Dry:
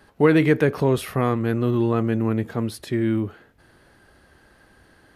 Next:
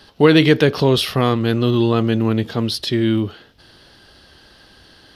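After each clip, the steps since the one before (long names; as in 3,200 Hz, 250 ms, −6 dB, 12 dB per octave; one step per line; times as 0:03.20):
flat-topped bell 4,000 Hz +13 dB 1.2 octaves
level +4.5 dB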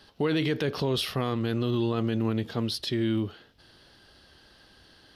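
brickwall limiter −9.5 dBFS, peak gain reduction 8 dB
level −8.5 dB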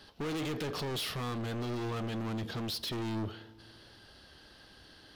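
hard clipping −34 dBFS, distortion −5 dB
feedback delay network reverb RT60 2 s, low-frequency decay 1×, high-frequency decay 0.4×, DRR 18 dB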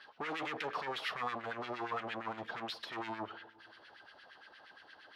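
auto-filter band-pass sine 8.6 Hz 720–2,200 Hz
level +8 dB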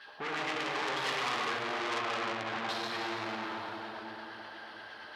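dense smooth reverb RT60 4 s, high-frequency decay 0.8×, DRR −6 dB
saturating transformer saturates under 3,800 Hz
level +3 dB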